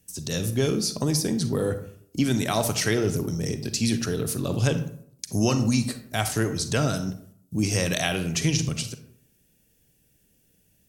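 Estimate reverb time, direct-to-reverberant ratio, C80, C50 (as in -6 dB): 0.65 s, 9.0 dB, 14.5 dB, 10.5 dB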